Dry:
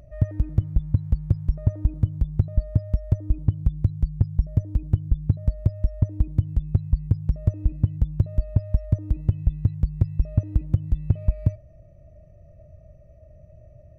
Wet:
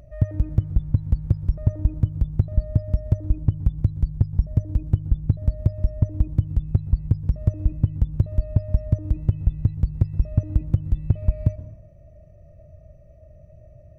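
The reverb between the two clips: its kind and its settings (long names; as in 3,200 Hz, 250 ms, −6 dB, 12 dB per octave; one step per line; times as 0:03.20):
dense smooth reverb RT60 0.81 s, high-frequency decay 0.65×, pre-delay 110 ms, DRR 15.5 dB
level +1 dB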